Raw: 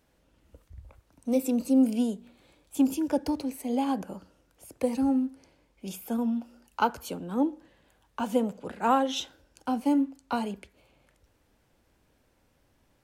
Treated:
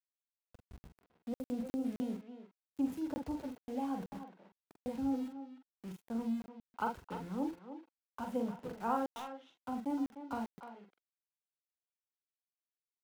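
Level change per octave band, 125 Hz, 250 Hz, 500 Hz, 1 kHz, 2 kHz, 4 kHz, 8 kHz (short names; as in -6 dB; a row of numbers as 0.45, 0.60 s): -6.0 dB, -10.5 dB, -11.5 dB, -10.0 dB, -10.5 dB, -17.5 dB, under -15 dB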